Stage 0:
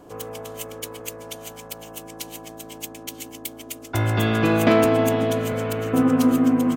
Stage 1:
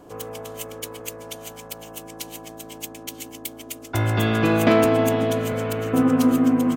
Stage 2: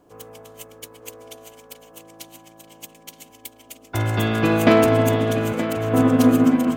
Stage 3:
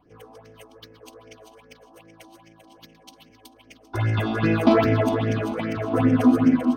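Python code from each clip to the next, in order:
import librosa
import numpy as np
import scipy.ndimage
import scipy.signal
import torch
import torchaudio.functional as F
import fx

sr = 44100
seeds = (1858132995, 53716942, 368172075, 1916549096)

y1 = x
y2 = fx.quant_dither(y1, sr, seeds[0], bits=12, dither='triangular')
y2 = fx.echo_filtered(y2, sr, ms=923, feedback_pct=44, hz=3900.0, wet_db=-7.0)
y2 = fx.upward_expand(y2, sr, threshold_db=-39.0, expansion=1.5)
y2 = y2 * 10.0 ** (3.0 / 20.0)
y3 = scipy.signal.savgol_filter(y2, 15, 4, mode='constant')
y3 = fx.phaser_stages(y3, sr, stages=6, low_hz=120.0, high_hz=1100.0, hz=2.5, feedback_pct=30)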